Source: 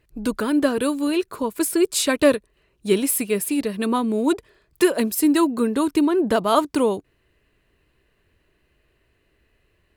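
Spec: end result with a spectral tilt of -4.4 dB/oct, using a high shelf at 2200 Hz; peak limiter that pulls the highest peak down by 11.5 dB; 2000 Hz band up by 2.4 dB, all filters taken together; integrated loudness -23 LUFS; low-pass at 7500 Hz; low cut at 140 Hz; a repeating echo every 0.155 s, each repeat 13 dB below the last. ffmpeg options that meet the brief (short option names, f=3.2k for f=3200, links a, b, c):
-af "highpass=140,lowpass=7.5k,equalizer=f=2k:t=o:g=5.5,highshelf=f=2.2k:g=-4.5,alimiter=limit=-15.5dB:level=0:latency=1,aecho=1:1:155|310|465:0.224|0.0493|0.0108,volume=2dB"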